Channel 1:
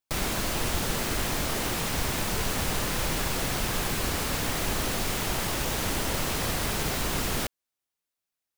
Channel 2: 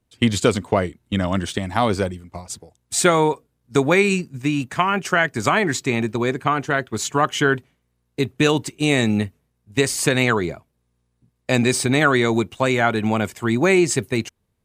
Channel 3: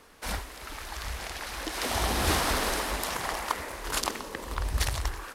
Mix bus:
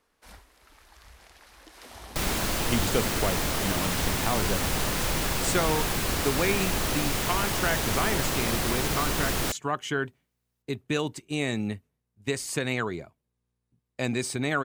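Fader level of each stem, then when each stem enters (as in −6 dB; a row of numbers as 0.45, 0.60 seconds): +1.0, −10.5, −16.5 decibels; 2.05, 2.50, 0.00 seconds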